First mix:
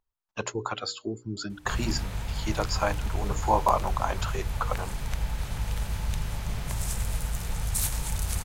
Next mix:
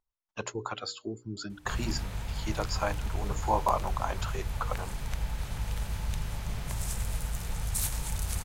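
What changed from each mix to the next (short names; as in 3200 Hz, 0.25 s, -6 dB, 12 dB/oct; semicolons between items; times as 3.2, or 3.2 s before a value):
speech -4.0 dB; background -3.0 dB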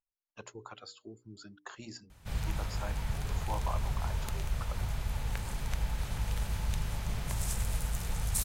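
speech -11.5 dB; background: entry +0.60 s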